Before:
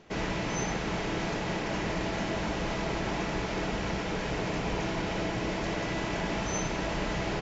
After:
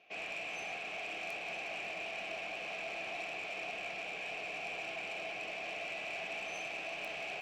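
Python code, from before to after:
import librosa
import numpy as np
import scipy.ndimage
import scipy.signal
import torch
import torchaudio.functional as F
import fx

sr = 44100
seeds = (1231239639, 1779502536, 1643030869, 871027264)

p1 = fx.vowel_filter(x, sr, vowel='a')
p2 = fx.high_shelf_res(p1, sr, hz=1500.0, db=9.0, q=3.0)
p3 = fx.notch(p2, sr, hz=1500.0, q=29.0)
p4 = p3 + fx.echo_single(p3, sr, ms=972, db=-14.0, dry=0)
p5 = 10.0 ** (-36.0 / 20.0) * np.tanh(p4 / 10.0 ** (-36.0 / 20.0))
p6 = fx.quant_dither(p5, sr, seeds[0], bits=6, dither='none')
p7 = p5 + (p6 * librosa.db_to_amplitude(-1.5))
p8 = fx.echo_crushed(p7, sr, ms=181, feedback_pct=80, bits=12, wet_db=-14.0)
y = p8 * librosa.db_to_amplitude(1.0)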